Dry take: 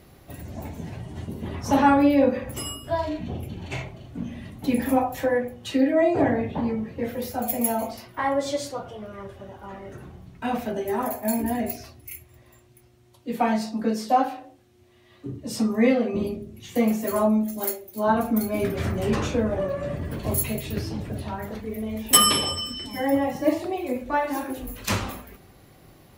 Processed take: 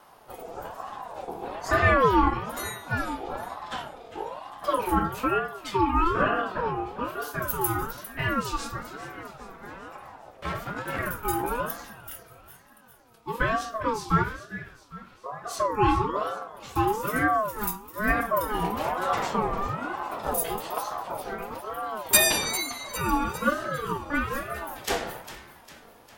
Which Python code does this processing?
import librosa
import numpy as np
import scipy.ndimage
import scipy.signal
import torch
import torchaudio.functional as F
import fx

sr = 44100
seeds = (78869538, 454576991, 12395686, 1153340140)

p1 = fx.lower_of_two(x, sr, delay_ms=1.7, at=(10.15, 10.99))
p2 = fx.vibrato(p1, sr, rate_hz=2.4, depth_cents=20.0)
p3 = p2 + fx.echo_split(p2, sr, split_hz=570.0, low_ms=103, high_ms=402, feedback_pct=52, wet_db=-13.5, dry=0)
y = fx.ring_lfo(p3, sr, carrier_hz=760.0, swing_pct=25, hz=1.1)